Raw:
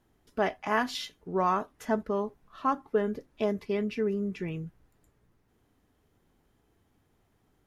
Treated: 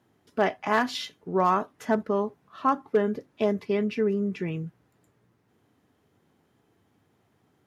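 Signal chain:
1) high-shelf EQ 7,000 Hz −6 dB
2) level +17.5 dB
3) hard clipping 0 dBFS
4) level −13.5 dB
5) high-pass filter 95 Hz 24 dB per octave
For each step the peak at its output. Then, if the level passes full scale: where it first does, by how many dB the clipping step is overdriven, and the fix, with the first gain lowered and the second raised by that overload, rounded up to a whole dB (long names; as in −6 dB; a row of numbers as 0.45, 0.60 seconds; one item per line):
−14.0, +3.5, 0.0, −13.5, −10.5 dBFS
step 2, 3.5 dB
step 2 +13.5 dB, step 4 −9.5 dB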